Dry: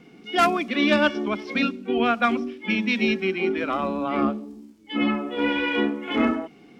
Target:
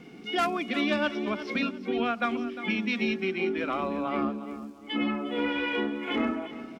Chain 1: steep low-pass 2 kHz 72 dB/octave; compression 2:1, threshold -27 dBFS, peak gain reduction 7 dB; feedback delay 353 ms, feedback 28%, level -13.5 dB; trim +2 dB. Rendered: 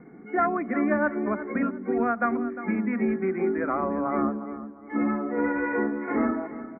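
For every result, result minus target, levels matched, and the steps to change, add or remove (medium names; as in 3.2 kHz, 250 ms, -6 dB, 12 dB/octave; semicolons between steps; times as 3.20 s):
compression: peak gain reduction -3 dB; 2 kHz band -3.0 dB
change: compression 2:1, threshold -33.5 dBFS, peak gain reduction 10.5 dB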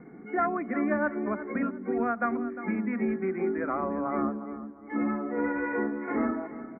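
2 kHz band -3.0 dB
remove: steep low-pass 2 kHz 72 dB/octave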